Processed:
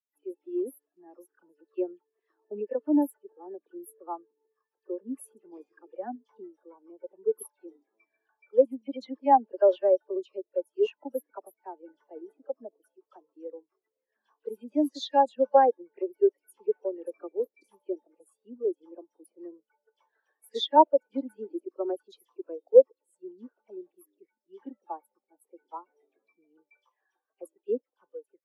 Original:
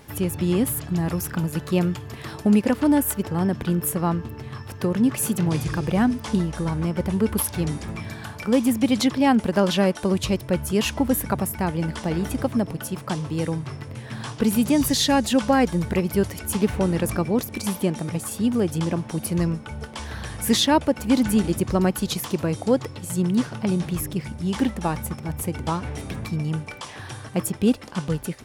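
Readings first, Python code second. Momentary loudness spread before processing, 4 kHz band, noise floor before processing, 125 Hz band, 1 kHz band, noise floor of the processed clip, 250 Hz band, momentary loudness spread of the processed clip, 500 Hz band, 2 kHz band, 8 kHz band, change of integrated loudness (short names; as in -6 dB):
11 LU, -13.5 dB, -39 dBFS, under -40 dB, 0.0 dB, under -85 dBFS, -14.5 dB, 24 LU, -1.0 dB, -19.0 dB, under -25 dB, -4.0 dB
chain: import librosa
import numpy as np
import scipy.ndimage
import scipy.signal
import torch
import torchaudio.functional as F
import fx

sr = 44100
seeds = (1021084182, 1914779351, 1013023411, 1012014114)

y = scipy.signal.sosfilt(scipy.signal.butter(4, 350.0, 'highpass', fs=sr, output='sos'), x)
y = fx.dispersion(y, sr, late='lows', ms=55.0, hz=2300.0)
y = fx.spectral_expand(y, sr, expansion=2.5)
y = F.gain(torch.from_numpy(y), 2.5).numpy()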